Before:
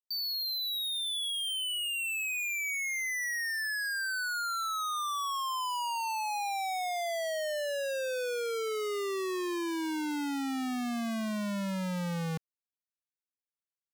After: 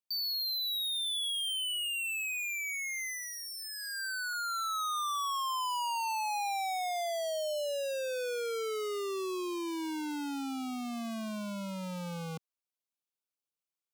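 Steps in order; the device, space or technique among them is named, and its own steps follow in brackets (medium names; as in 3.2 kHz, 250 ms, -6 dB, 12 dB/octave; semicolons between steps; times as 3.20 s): PA system with an anti-feedback notch (high-pass 170 Hz 12 dB/octave; Butterworth band-stop 1.8 kHz, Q 3.2; peak limiter -30 dBFS, peak gain reduction 3.5 dB); 4.33–5.16 s: steep high-pass 820 Hz 72 dB/octave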